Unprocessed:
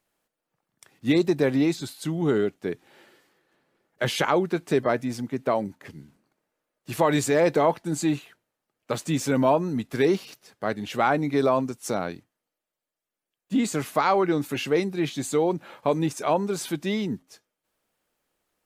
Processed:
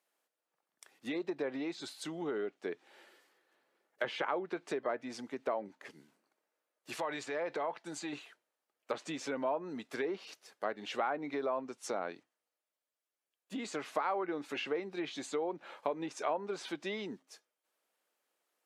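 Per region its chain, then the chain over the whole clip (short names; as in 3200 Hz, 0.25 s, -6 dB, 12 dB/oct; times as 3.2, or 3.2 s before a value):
6.95–8.13 bell 330 Hz -5 dB 2 oct + compressor 3:1, threshold -26 dBFS
whole clip: compressor 6:1, threshold -24 dBFS; HPF 400 Hz 12 dB/oct; treble ducked by the level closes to 2100 Hz, closed at -27 dBFS; gain -4.5 dB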